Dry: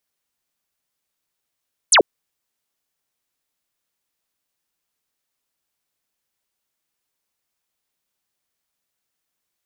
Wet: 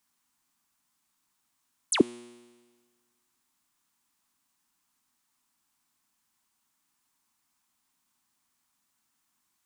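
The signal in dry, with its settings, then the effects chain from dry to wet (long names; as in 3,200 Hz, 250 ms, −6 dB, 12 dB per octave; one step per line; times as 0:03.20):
single falling chirp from 11,000 Hz, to 310 Hz, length 0.09 s sine, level −8.5 dB
octave-band graphic EQ 250/500/1,000/8,000 Hz +11/−12/+10/+5 dB
compressor whose output falls as the input rises −15 dBFS, ratio −0.5
tuned comb filter 120 Hz, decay 1.5 s, mix 50%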